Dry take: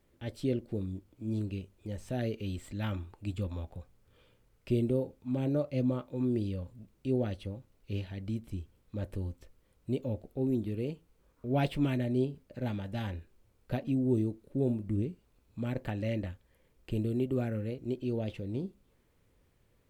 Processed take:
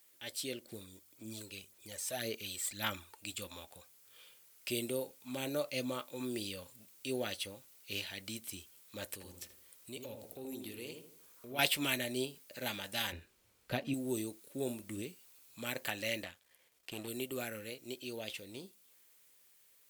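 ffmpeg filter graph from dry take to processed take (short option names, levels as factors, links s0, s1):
-filter_complex "[0:a]asettb=1/sr,asplit=3[s0][s1][s2];[s0]atrim=end=0.654[s3];[s1]atrim=start=0.65:end=3.15,asetpts=PTS-STARTPTS,afade=t=in:d=0.004:c=qsin,afade=t=out:st=2.496:d=0.004:c=qsin,equalizer=f=2800:w=6:g=-4.5,aphaser=in_gain=1:out_gain=1:delay=2.2:decay=0.5:speed=1.8:type=sinusoidal[s4];[s2]atrim=start=3.146[s5];[s3][s4]acrossfade=d=0.004:c1=hsin:c2=qsin[s6];[s6][s5]acrossfade=d=0.004:c1=qsin:c2=hsin,asettb=1/sr,asplit=3[s7][s8][s9];[s7]atrim=end=9.124[s10];[s8]atrim=start=9.12:end=11.59,asetpts=PTS-STARTPTS,afade=t=in:d=0.004:c=qsin,afade=t=out:st=2.466:d=0.004:c=qsin,acompressor=threshold=0.01:ratio=2:attack=3.2:release=140:knee=1:detection=peak,asplit=2[s11][s12];[s12]adelay=79,lowpass=f=1100:p=1,volume=0.668,asplit=2[s13][s14];[s14]adelay=79,lowpass=f=1100:p=1,volume=0.47,asplit=2[s15][s16];[s16]adelay=79,lowpass=f=1100:p=1,volume=0.47,asplit=2[s17][s18];[s18]adelay=79,lowpass=f=1100:p=1,volume=0.47,asplit=2[s19][s20];[s20]adelay=79,lowpass=f=1100:p=1,volume=0.47,asplit=2[s21][s22];[s22]adelay=79,lowpass=f=1100:p=1,volume=0.47[s23];[s11][s13][s15][s17][s19][s21][s23]amix=inputs=7:normalize=0,atrim=end_sample=108927[s24];[s9]atrim=start=11.586[s25];[s10][s24]acrossfade=d=0.004:c1=hsin:c2=qsin[s26];[s26][s25]acrossfade=d=0.004:c1=qsin:c2=hsin,asettb=1/sr,asplit=3[s27][s28][s29];[s27]atrim=end=13.124[s30];[s28]atrim=start=13.12:end=13.94,asetpts=PTS-STARTPTS,afade=t=in:d=0.004:c=qsin,afade=t=out:st=0.816:d=0.004:c=qsin,lowpass=f=2600:p=1,lowshelf=f=240:g=11.5[s31];[s29]atrim=start=13.936[s32];[s30][s31]acrossfade=d=0.004:c1=hsin:c2=qsin[s33];[s33][s32]acrossfade=d=0.004:c1=qsin:c2=hsin,asettb=1/sr,asplit=3[s34][s35][s36];[s34]atrim=end=16.244[s37];[s35]atrim=start=16.24:end=17.08,asetpts=PTS-STARTPTS,afade=t=in:d=0.004:c=qsin,afade=t=out:st=0.836:d=0.004:c=qsin,aeval=exprs='if(lt(val(0),0),0.447*val(0),val(0))':c=same,lowpass=f=3900:p=1,equalizer=f=700:w=7.7:g=5.5[s38];[s36]atrim=start=17.076[s39];[s37][s38]acrossfade=d=0.004:c1=hsin:c2=qsin[s40];[s40][s39]acrossfade=d=0.004:c1=qsin:c2=hsin,aderivative,dynaudnorm=f=890:g=9:m=1.68,volume=5.31"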